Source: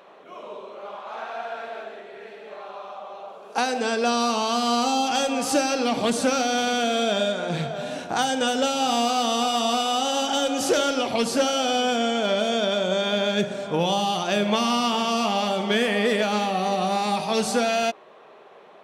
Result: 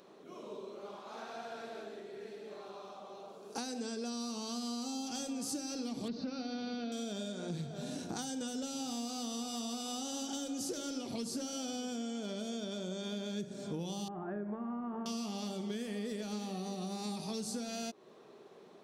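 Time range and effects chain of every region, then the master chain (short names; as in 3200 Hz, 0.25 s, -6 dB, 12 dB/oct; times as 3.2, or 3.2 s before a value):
6.08–6.92 steep low-pass 4800 Hz 48 dB/oct + notch 3300 Hz, Q 7.4
14.08–15.06 elliptic low-pass 1700 Hz, stop band 70 dB + bell 140 Hz -6.5 dB 1.8 oct + notch 520 Hz, Q 8.1
whole clip: band shelf 1300 Hz -13 dB 3 oct; compressor 6:1, threshold -37 dBFS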